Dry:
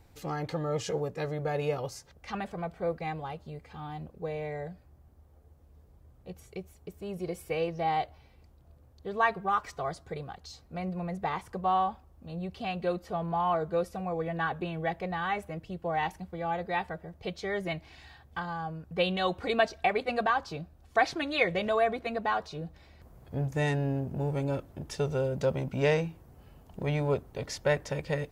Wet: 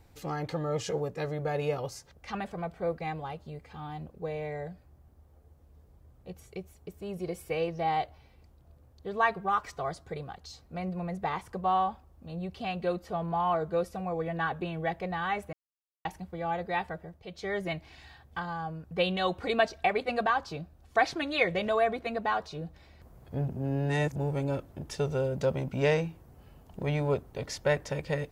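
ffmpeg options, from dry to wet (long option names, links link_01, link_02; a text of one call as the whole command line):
ffmpeg -i in.wav -filter_complex "[0:a]asplit=7[link_01][link_02][link_03][link_04][link_05][link_06][link_07];[link_01]atrim=end=15.53,asetpts=PTS-STARTPTS,afade=type=out:start_time=15.526:duration=0.004:curve=hsin[link_08];[link_02]atrim=start=15.53:end=16.05,asetpts=PTS-STARTPTS,volume=0[link_09];[link_03]atrim=start=16.05:end=17.25,asetpts=PTS-STARTPTS,afade=type=in:duration=0.004:curve=hsin,afade=type=out:start_time=0.92:duration=0.28:curve=qsin:silence=0.354813[link_10];[link_04]atrim=start=17.25:end=17.27,asetpts=PTS-STARTPTS,volume=-9dB[link_11];[link_05]atrim=start=17.27:end=23.482,asetpts=PTS-STARTPTS,afade=type=in:duration=0.28:curve=qsin:silence=0.354813[link_12];[link_06]atrim=start=23.478:end=24.162,asetpts=PTS-STARTPTS,areverse[link_13];[link_07]atrim=start=24.158[link_14];[link_08][link_09][link_10][link_11][link_12]concat=n=5:v=0:a=1[link_15];[link_15][link_13]acrossfade=duration=0.004:curve1=hsin:curve2=hsin[link_16];[link_16][link_14]acrossfade=duration=0.004:curve1=hsin:curve2=hsin" out.wav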